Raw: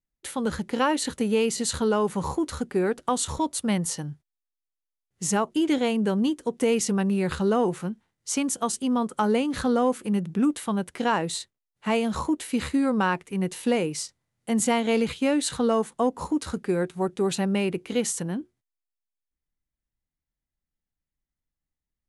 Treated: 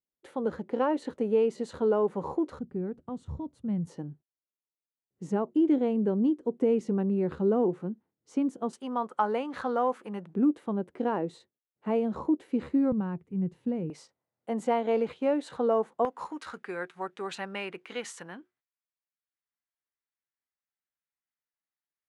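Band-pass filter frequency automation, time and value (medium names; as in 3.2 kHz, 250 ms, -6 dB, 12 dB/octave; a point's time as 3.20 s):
band-pass filter, Q 1.1
470 Hz
from 2.59 s 110 Hz
from 3.87 s 330 Hz
from 8.73 s 910 Hz
from 10.34 s 370 Hz
from 12.92 s 130 Hz
from 13.90 s 610 Hz
from 16.05 s 1.5 kHz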